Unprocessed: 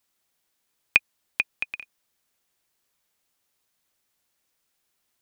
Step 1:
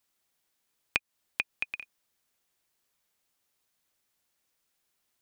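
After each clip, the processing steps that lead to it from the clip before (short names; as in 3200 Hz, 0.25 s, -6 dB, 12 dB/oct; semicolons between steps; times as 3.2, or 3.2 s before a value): compressor 12:1, threshold -22 dBFS, peak gain reduction 11 dB; gain -2.5 dB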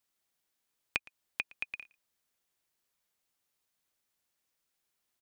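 echo 0.114 s -23 dB; gain -4.5 dB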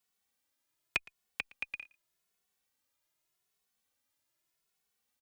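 endless flanger 2.3 ms +0.84 Hz; gain +3 dB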